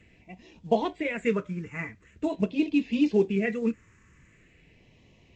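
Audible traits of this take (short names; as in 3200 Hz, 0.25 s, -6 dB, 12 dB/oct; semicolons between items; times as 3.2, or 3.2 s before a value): phasing stages 4, 0.44 Hz, lowest notch 690–1400 Hz; µ-law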